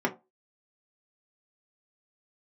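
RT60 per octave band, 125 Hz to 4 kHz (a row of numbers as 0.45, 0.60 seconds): 0.25, 0.25, 0.25, 0.25, 0.15, 0.15 seconds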